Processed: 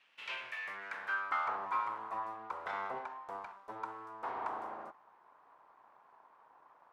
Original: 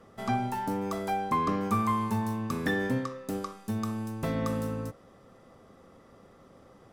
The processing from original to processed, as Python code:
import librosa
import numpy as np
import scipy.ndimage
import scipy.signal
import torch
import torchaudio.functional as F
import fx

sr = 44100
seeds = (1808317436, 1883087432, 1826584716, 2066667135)

y = fx.notch_comb(x, sr, f0_hz=210.0, at=(1.65, 2.73))
y = np.abs(y)
y = fx.filter_sweep_bandpass(y, sr, from_hz=2800.0, to_hz=1000.0, start_s=0.28, end_s=1.61, q=3.6)
y = y * librosa.db_to_amplitude(4.5)